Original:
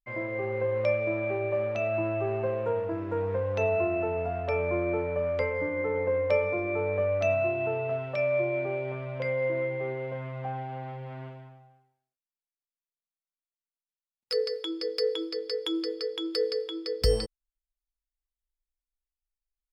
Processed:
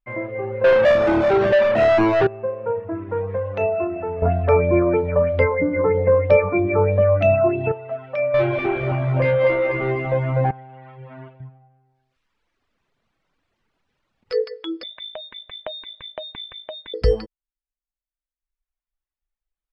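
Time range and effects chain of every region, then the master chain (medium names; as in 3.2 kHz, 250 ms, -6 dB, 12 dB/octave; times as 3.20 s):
0.64–2.27 s: median filter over 25 samples + high-pass 140 Hz 24 dB/octave + waveshaping leveller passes 5
4.22–7.72 s: bass shelf 490 Hz +12 dB + sweeping bell 3.1 Hz 990–4400 Hz +9 dB
8.34–10.51 s: bass shelf 120 Hz +10 dB + waveshaping leveller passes 2 + bit-crushed delay 246 ms, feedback 55%, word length 9-bit, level -3.5 dB
11.40–14.32 s: bass shelf 320 Hz +9 dB + upward compressor, threshold -48 dBFS
14.83–16.94 s: band-stop 1.3 kHz, Q 5 + compression 3:1, threshold -31 dBFS + frequency inversion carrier 4 kHz
whole clip: low-pass 2.4 kHz 12 dB/octave; reverb removal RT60 1.3 s; trim +7 dB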